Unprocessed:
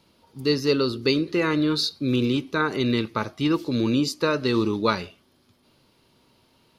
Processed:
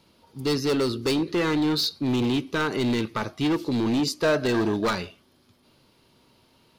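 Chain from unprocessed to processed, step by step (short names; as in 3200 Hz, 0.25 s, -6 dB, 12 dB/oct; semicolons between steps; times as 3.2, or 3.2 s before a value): overloaded stage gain 21 dB; 4.22–4.84 small resonant body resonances 670/1600 Hz, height 13 dB -> 16 dB; gain +1 dB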